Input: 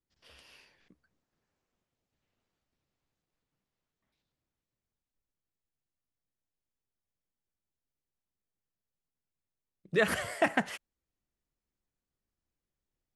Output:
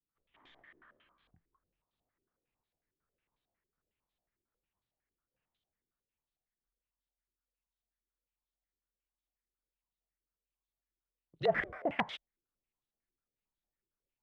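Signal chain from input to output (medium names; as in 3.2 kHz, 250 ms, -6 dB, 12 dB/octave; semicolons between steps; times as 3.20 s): gliding tape speed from 65% -> 120%; frequency shift -45 Hz; step-sequenced low-pass 11 Hz 370–3700 Hz; trim -8 dB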